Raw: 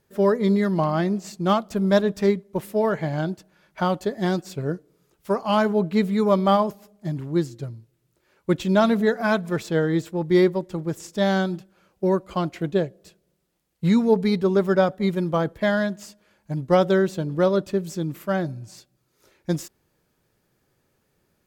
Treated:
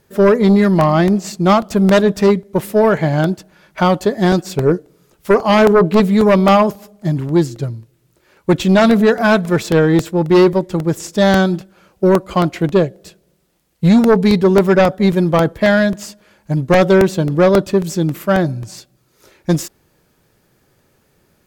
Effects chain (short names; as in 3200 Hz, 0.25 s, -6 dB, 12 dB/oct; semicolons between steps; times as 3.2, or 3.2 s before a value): 4.43–6 dynamic EQ 400 Hz, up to +8 dB, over -37 dBFS, Q 2.2; sine folder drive 7 dB, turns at -5.5 dBFS; crackling interface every 0.27 s, samples 64, repeat, from 0.81